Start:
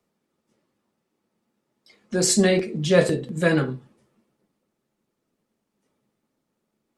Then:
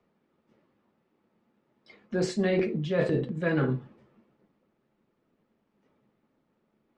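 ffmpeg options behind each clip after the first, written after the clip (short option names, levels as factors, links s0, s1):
-af "lowpass=2700,areverse,acompressor=threshold=0.0447:ratio=8,areverse,volume=1.58"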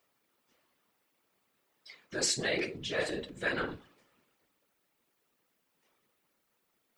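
-af "equalizer=f=73:w=0.34:g=-14.5,afftfilt=real='hypot(re,im)*cos(2*PI*random(0))':imag='hypot(re,im)*sin(2*PI*random(1))':win_size=512:overlap=0.75,crystalizer=i=8:c=0"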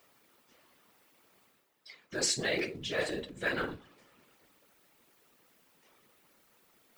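-af "acrusher=bits=8:mode=log:mix=0:aa=0.000001,areverse,acompressor=mode=upward:threshold=0.00178:ratio=2.5,areverse"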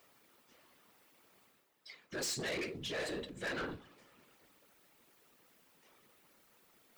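-af "asoftclip=type=tanh:threshold=0.0211,volume=0.891"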